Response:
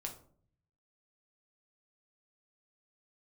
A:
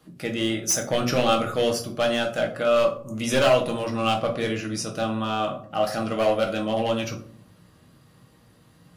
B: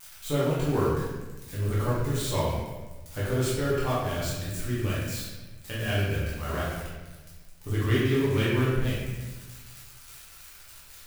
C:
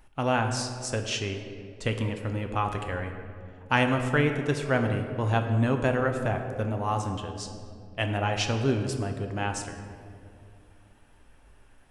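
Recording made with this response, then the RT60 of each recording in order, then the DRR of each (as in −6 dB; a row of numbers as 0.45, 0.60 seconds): A; 0.55, 1.2, 2.5 seconds; 1.5, −9.5, 4.5 decibels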